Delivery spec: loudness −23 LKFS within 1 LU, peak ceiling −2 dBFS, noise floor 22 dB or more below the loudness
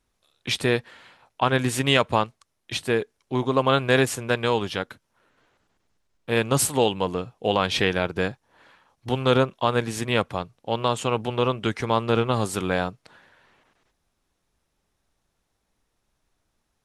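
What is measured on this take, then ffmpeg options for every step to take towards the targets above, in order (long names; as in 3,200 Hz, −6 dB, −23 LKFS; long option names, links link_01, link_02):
integrated loudness −24.0 LKFS; sample peak −3.5 dBFS; target loudness −23.0 LKFS
→ -af "volume=1dB"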